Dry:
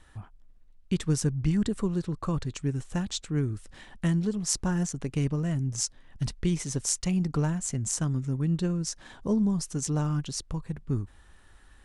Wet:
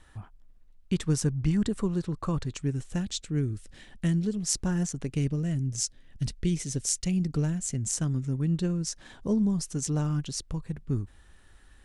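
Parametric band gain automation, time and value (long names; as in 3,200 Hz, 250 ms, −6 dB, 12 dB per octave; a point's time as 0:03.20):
parametric band 1,000 Hz 1.1 octaves
0:02.47 0 dB
0:03.12 −9.5 dB
0:04.38 −9.5 dB
0:04.95 −2 dB
0:05.33 −12 dB
0:07.55 −12 dB
0:08.14 −4 dB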